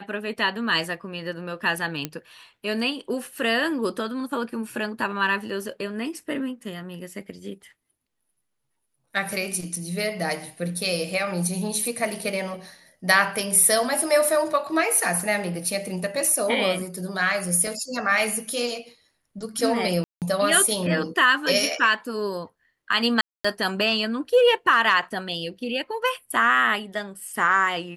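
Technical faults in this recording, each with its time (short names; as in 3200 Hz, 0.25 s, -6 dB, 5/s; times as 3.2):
2.05 pop -11 dBFS
17.67 gap 2.9 ms
20.04–20.22 gap 0.178 s
23.21–23.45 gap 0.235 s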